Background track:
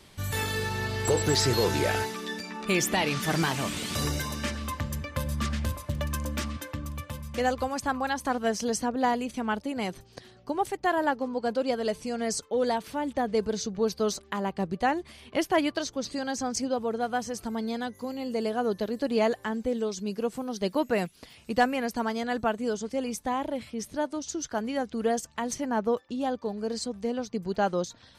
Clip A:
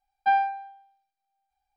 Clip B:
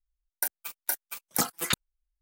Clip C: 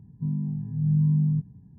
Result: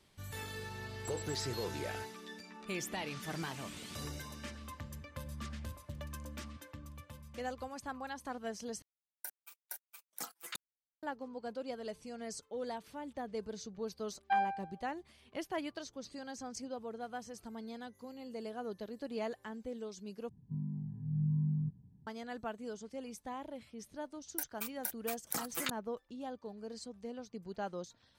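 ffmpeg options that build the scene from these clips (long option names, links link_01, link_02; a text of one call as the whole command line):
ffmpeg -i bed.wav -i cue0.wav -i cue1.wav -i cue2.wav -filter_complex "[2:a]asplit=2[link_01][link_02];[0:a]volume=-14dB[link_03];[link_01]highpass=frequency=500:poles=1[link_04];[link_02]acompressor=threshold=-31dB:ratio=6:attack=3.2:release=140:knee=1:detection=peak[link_05];[link_03]asplit=3[link_06][link_07][link_08];[link_06]atrim=end=8.824[link_09];[link_04]atrim=end=2.21,asetpts=PTS-STARTPTS,volume=-16dB[link_10];[link_07]atrim=start=11.026:end=20.294[link_11];[3:a]atrim=end=1.78,asetpts=PTS-STARTPTS,volume=-11dB[link_12];[link_08]atrim=start=22.066[link_13];[1:a]atrim=end=1.76,asetpts=PTS-STARTPTS,volume=-9.5dB,afade=type=in:duration=0.004:curve=hsin,afade=type=out:start_time=1.756:duration=0.004:curve=hsin,adelay=14040[link_14];[link_05]atrim=end=2.21,asetpts=PTS-STARTPTS,volume=-1.5dB,afade=type=in:duration=0.004:curve=hsin,afade=type=out:start_time=2.206:duration=0.004:curve=hsin,adelay=23960[link_15];[link_09][link_10]acrossfade=duration=0.004:curve1=hsin:curve2=hsin[link_16];[link_16][link_11]acrossfade=duration=0.004:curve1=hsin:curve2=hsin[link_17];[link_17][link_12]acrossfade=duration=0.004:curve1=hsin:curve2=hsin[link_18];[link_18][link_13]acrossfade=duration=0.004:curve1=hsin:curve2=hsin[link_19];[link_19][link_14][link_15]amix=inputs=3:normalize=0" out.wav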